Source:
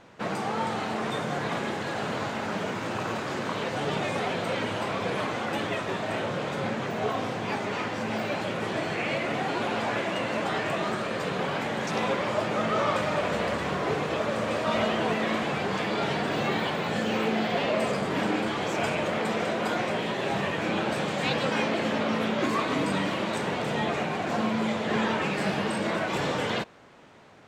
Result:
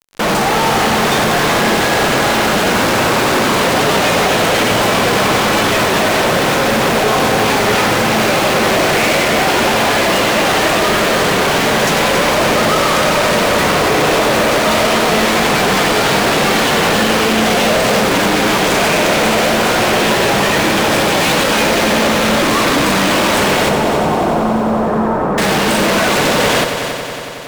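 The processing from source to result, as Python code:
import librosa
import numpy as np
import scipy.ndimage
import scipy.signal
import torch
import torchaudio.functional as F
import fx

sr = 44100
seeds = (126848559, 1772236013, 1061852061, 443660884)

y = fx.highpass(x, sr, hz=140.0, slope=6)
y = fx.fuzz(y, sr, gain_db=49.0, gate_db=-45.0)
y = fx.lowpass(y, sr, hz=1200.0, slope=24, at=(23.69, 25.38))
y = fx.echo_heads(y, sr, ms=92, heads='first and third', feedback_pct=71, wet_db=-10)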